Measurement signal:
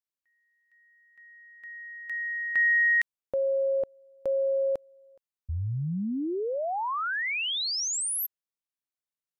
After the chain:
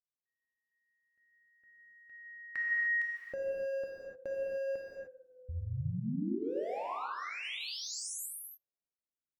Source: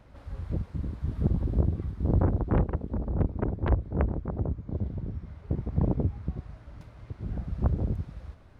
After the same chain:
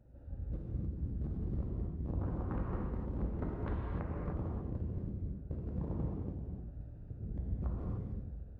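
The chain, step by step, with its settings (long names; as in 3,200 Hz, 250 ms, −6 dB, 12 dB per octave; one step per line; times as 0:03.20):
adaptive Wiener filter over 41 samples
dynamic equaliser 1,200 Hz, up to +5 dB, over −51 dBFS, Q 2.3
downward compressor 6 to 1, threshold −31 dBFS
on a send: tape delay 67 ms, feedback 88%, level −19.5 dB, low-pass 1,500 Hz
on the sum: reverb whose tail is shaped and stops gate 330 ms flat, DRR −3.5 dB
level −7 dB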